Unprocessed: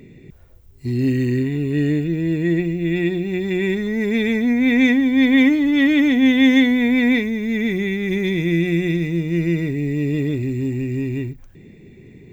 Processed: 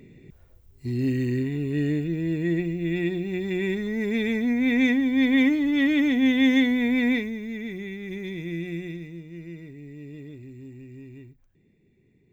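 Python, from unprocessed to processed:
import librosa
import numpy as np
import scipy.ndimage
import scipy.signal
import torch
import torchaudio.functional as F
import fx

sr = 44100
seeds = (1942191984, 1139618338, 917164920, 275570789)

y = fx.gain(x, sr, db=fx.line((7.09, -6.0), (7.61, -13.0), (8.76, -13.0), (9.3, -20.0)))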